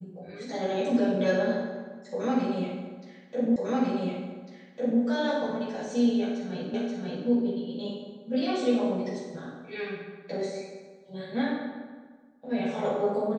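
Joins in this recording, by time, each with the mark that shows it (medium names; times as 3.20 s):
3.56 s: repeat of the last 1.45 s
6.74 s: repeat of the last 0.53 s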